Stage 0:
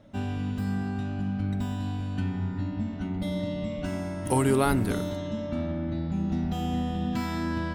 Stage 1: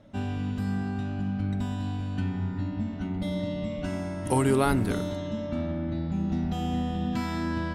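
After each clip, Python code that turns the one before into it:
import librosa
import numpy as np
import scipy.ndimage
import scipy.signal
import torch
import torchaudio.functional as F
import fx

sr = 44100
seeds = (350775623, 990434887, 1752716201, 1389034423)

y = scipy.signal.sosfilt(scipy.signal.bessel(2, 11000.0, 'lowpass', norm='mag', fs=sr, output='sos'), x)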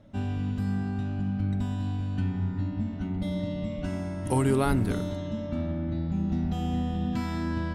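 y = fx.low_shelf(x, sr, hz=200.0, db=6.0)
y = y * 10.0 ** (-3.0 / 20.0)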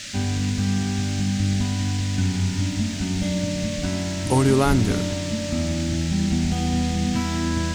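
y = fx.dmg_noise_band(x, sr, seeds[0], low_hz=1600.0, high_hz=7400.0, level_db=-42.0)
y = fx.quant_dither(y, sr, seeds[1], bits=10, dither='none')
y = y * 10.0 ** (6.0 / 20.0)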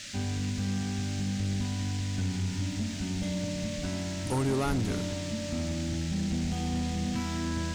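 y = 10.0 ** (-15.5 / 20.0) * np.tanh(x / 10.0 ** (-15.5 / 20.0))
y = y * 10.0 ** (-7.0 / 20.0)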